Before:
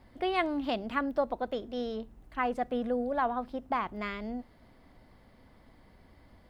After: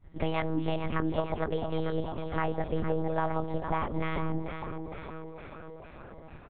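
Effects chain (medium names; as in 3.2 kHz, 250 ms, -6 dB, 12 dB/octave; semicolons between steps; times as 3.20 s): expander -50 dBFS; bass shelf 200 Hz +11.5 dB; compression 3:1, threshold -34 dBFS, peak gain reduction 9.5 dB; on a send: frequency-shifting echo 453 ms, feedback 60%, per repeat +80 Hz, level -8 dB; on the sum: monotone LPC vocoder at 8 kHz 160 Hz; trim +5.5 dB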